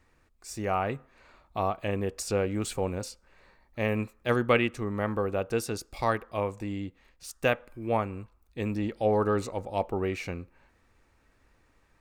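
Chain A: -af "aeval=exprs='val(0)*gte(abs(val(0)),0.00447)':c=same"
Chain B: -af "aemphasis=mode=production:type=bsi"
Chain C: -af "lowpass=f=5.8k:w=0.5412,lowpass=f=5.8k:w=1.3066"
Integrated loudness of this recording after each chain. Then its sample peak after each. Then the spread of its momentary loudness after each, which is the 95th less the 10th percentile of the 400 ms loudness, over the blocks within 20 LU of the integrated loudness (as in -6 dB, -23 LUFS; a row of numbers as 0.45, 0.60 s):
-30.0, -31.0, -30.5 LUFS; -10.0, -8.0, -10.0 dBFS; 15, 12, 12 LU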